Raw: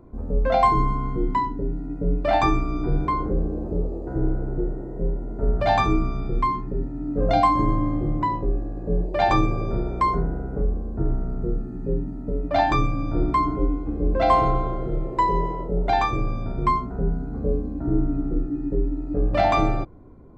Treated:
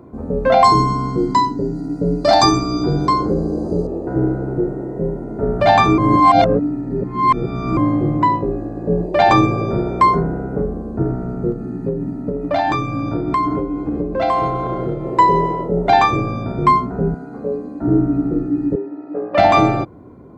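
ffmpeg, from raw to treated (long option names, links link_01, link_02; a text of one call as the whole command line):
ffmpeg -i in.wav -filter_complex "[0:a]asettb=1/sr,asplit=3[link_01][link_02][link_03];[link_01]atrim=end=0.644[link_04];[link_02]atrim=start=0.64:end=3.87,asetpts=PTS-STARTPTS,afade=type=in:duration=0.004:curve=qsin,afade=type=out:start_time=3.226:duration=0.004:curve=qsin,highshelf=frequency=3600:width_type=q:width=3:gain=10[link_05];[link_03]atrim=start=3.866[link_06];[link_04][link_05]acrossfade=duration=0.004:curve1=hsin:curve2=qsin[link_07];[link_07][link_06]acrossfade=duration=0.004:curve1=qsin:curve2=hsin,asettb=1/sr,asplit=3[link_08][link_09][link_10];[link_08]atrim=end=11.524[link_11];[link_09]atrim=start=11.52:end=15.19,asetpts=PTS-STARTPTS,afade=type=in:duration=0.004:curve=qsin,afade=type=out:start_time=3.666:duration=0.004:curve=qsin,acompressor=threshold=-22dB:ratio=6:attack=3.2:release=140:knee=1:detection=peak[link_12];[link_10]atrim=start=15.186[link_13];[link_11][link_12]acrossfade=duration=0.004:curve1=hsin:curve2=qsin[link_14];[link_14][link_13]acrossfade=duration=0.004:curve1=qsin:curve2=hsin,asettb=1/sr,asplit=3[link_15][link_16][link_17];[link_15]atrim=end=17.144[link_18];[link_16]atrim=start=17.14:end=17.82,asetpts=PTS-STARTPTS,afade=type=in:duration=0.004:curve=qsin,afade=type=out:start_time=0.676:duration=0.004:curve=qsin,highpass=frequency=570:poles=1[link_19];[link_17]atrim=start=17.816[link_20];[link_18][link_19]acrossfade=duration=0.004:curve1=hsin:curve2=qsin[link_21];[link_21][link_20]acrossfade=duration=0.004:curve1=qsin:curve2=hsin,asettb=1/sr,asplit=3[link_22][link_23][link_24];[link_22]atrim=end=18.754[link_25];[link_23]atrim=start=18.75:end=19.38,asetpts=PTS-STARTPTS,afade=type=in:duration=0.004:curve=qsin,afade=type=out:start_time=0.626:duration=0.004:curve=qsin,highpass=480,lowpass=2500[link_26];[link_24]atrim=start=19.376[link_27];[link_25][link_26]acrossfade=duration=0.004:curve1=hsin:curve2=qsin[link_28];[link_28][link_27]acrossfade=duration=0.004:curve1=qsin:curve2=hsin,asplit=3[link_29][link_30][link_31];[link_29]atrim=end=5.982[link_32];[link_30]atrim=start=5.978:end=7.772,asetpts=PTS-STARTPTS,areverse[link_33];[link_31]atrim=start=7.768[link_34];[link_32][link_33]acrossfade=duration=0.004:curve1=hsin:curve2=hsin[link_35];[link_35][link_34]acrossfade=duration=0.004:curve1=hsin:curve2=hsin,highpass=110,alimiter=level_in=10dB:limit=-1dB:release=50:level=0:latency=1,volume=-1dB" out.wav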